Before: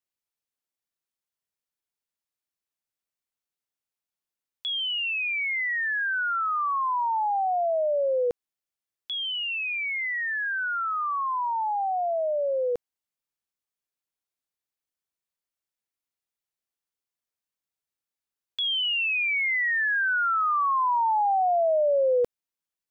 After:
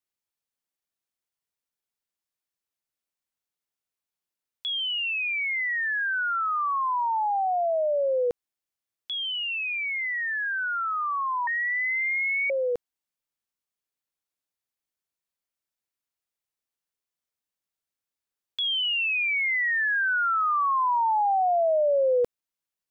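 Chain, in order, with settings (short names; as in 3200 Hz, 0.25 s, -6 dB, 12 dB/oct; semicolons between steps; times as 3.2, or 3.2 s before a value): 11.47–12.5 inverted band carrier 2800 Hz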